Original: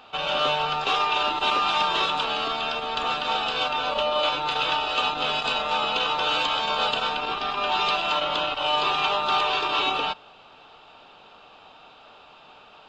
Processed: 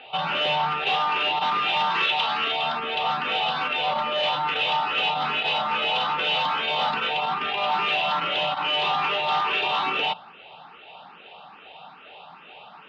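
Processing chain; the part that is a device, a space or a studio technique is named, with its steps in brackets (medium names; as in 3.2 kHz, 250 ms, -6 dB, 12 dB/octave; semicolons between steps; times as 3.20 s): barber-pole phaser into a guitar amplifier (barber-pole phaser +2.4 Hz; saturation -27 dBFS, distortion -11 dB; cabinet simulation 92–4000 Hz, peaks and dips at 100 Hz -9 dB, 170 Hz +8 dB, 300 Hz -3 dB, 810 Hz +5 dB, 2 kHz +5 dB, 2.8 kHz +4 dB); 1.90–2.52 s: tilt shelf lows -4 dB, about 1.1 kHz; trim +5 dB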